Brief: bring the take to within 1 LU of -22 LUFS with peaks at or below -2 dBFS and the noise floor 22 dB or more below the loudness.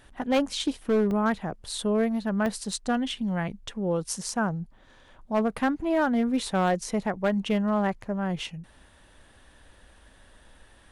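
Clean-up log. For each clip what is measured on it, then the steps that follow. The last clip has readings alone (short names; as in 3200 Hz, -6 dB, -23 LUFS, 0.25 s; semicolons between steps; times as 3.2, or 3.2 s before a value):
clipped 1.0%; flat tops at -18.0 dBFS; dropouts 2; longest dropout 1.4 ms; loudness -27.5 LUFS; peak -18.0 dBFS; loudness target -22.0 LUFS
-> clip repair -18 dBFS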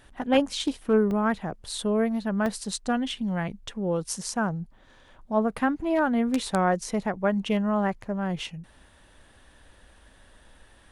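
clipped 0.0%; dropouts 2; longest dropout 1.4 ms
-> interpolate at 1.11/2.46, 1.4 ms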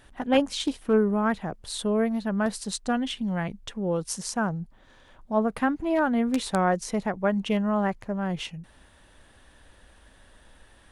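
dropouts 0; loudness -27.0 LUFS; peak -9.0 dBFS; loudness target -22.0 LUFS
-> gain +5 dB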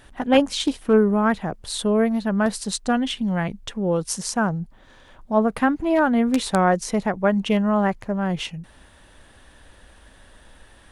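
loudness -22.0 LUFS; peak -4.0 dBFS; noise floor -51 dBFS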